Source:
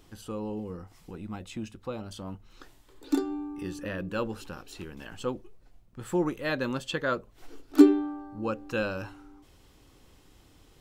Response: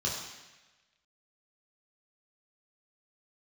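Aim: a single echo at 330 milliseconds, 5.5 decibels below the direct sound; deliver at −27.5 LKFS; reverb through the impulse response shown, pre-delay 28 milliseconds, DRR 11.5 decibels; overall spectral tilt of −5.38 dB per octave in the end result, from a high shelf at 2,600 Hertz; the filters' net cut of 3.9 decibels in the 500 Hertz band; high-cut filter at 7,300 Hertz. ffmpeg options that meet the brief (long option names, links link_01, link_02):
-filter_complex "[0:a]lowpass=7300,equalizer=frequency=500:width_type=o:gain=-5.5,highshelf=frequency=2600:gain=5.5,aecho=1:1:330:0.531,asplit=2[link_01][link_02];[1:a]atrim=start_sample=2205,adelay=28[link_03];[link_02][link_03]afir=irnorm=-1:irlink=0,volume=-18dB[link_04];[link_01][link_04]amix=inputs=2:normalize=0,volume=3.5dB"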